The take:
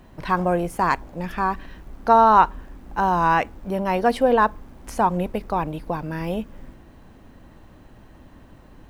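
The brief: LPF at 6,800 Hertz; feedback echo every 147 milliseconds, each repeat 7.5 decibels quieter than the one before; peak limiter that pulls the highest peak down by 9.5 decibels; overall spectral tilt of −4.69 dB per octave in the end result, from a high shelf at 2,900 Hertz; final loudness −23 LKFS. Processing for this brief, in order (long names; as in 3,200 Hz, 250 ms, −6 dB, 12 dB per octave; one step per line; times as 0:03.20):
low-pass filter 6,800 Hz
high-shelf EQ 2,900 Hz +6 dB
brickwall limiter −11.5 dBFS
repeating echo 147 ms, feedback 42%, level −7.5 dB
level +0.5 dB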